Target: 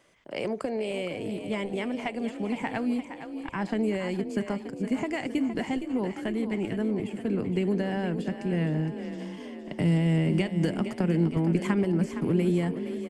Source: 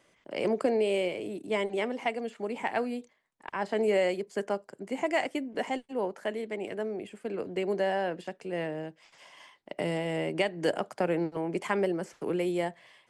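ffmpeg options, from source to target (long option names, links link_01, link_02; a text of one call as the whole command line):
ffmpeg -i in.wav -filter_complex "[0:a]acompressor=threshold=-28dB:ratio=6,asubboost=boost=11:cutoff=170,asplit=8[link_01][link_02][link_03][link_04][link_05][link_06][link_07][link_08];[link_02]adelay=464,afreqshift=31,volume=-10dB[link_09];[link_03]adelay=928,afreqshift=62,volume=-14.7dB[link_10];[link_04]adelay=1392,afreqshift=93,volume=-19.5dB[link_11];[link_05]adelay=1856,afreqshift=124,volume=-24.2dB[link_12];[link_06]adelay=2320,afreqshift=155,volume=-28.9dB[link_13];[link_07]adelay=2784,afreqshift=186,volume=-33.7dB[link_14];[link_08]adelay=3248,afreqshift=217,volume=-38.4dB[link_15];[link_01][link_09][link_10][link_11][link_12][link_13][link_14][link_15]amix=inputs=8:normalize=0,volume=2dB" out.wav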